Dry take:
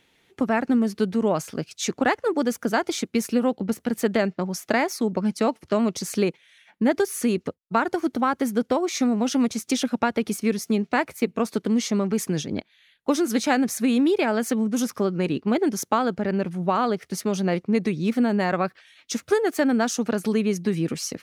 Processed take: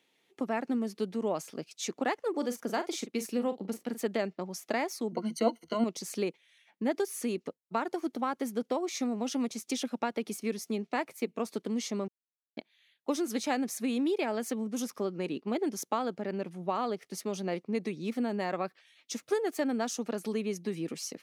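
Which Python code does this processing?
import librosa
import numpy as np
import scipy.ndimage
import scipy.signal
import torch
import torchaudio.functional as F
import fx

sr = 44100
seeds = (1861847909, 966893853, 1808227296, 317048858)

y = fx.doubler(x, sr, ms=41.0, db=-11.0, at=(2.3, 4.01))
y = fx.ripple_eq(y, sr, per_octave=1.9, db=17, at=(5.11, 5.84))
y = fx.edit(y, sr, fx.silence(start_s=12.08, length_s=0.49), tone=tone)
y = scipy.signal.sosfilt(scipy.signal.butter(2, 230.0, 'highpass', fs=sr, output='sos'), y)
y = fx.peak_eq(y, sr, hz=1500.0, db=-3.5, octaves=0.82)
y = fx.notch(y, sr, hz=1500.0, q=20.0)
y = y * librosa.db_to_amplitude(-8.0)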